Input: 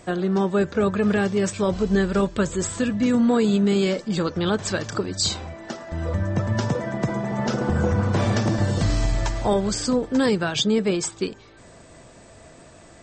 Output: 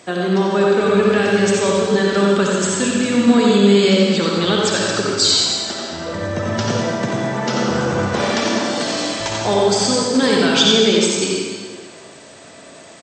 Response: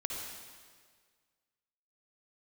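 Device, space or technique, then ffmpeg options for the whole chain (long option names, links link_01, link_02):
PA in a hall: -filter_complex "[0:a]asettb=1/sr,asplit=3[link_01][link_02][link_03];[link_01]atrim=end=8.054[link_04];[link_02]atrim=start=8.05:end=9.2,asetpts=PTS-STARTPTS,afade=type=in:duration=0.004:curve=qsin,afade=type=out:start_time=1.146:duration=0.004:curve=qsin,highpass=frequency=210:width=0.5412,highpass=frequency=210:width=1.3066[link_05];[link_03]atrim=start=9.196[link_06];[link_04][link_05]acrossfade=duration=0.004:curve1=hsin:curve2=qsin[link_07];[link_07][link_06]acrossfade=duration=0.004:curve1=qsin:curve2=hsin,highpass=190,equalizer=frequency=3800:width_type=o:width=1.8:gain=6,aecho=1:1:90:0.531[link_08];[1:a]atrim=start_sample=2205[link_09];[link_08][link_09]afir=irnorm=-1:irlink=0,volume=3.5dB"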